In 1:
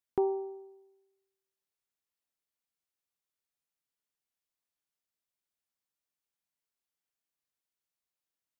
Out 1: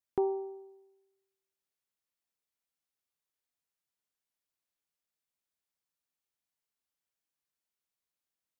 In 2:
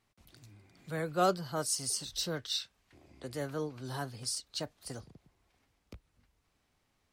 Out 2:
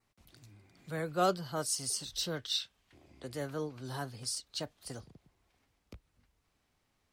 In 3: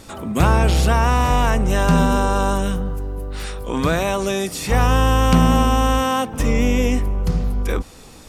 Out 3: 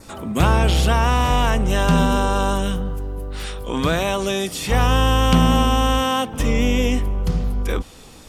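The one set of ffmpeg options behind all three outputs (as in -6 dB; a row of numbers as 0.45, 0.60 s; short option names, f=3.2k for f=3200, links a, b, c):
-af "adynamicequalizer=threshold=0.00501:dfrequency=3200:dqfactor=3.6:tfrequency=3200:tqfactor=3.6:attack=5:release=100:ratio=0.375:range=3.5:mode=boostabove:tftype=bell,volume=-1dB"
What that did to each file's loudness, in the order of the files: -1.0, -0.5, -0.5 LU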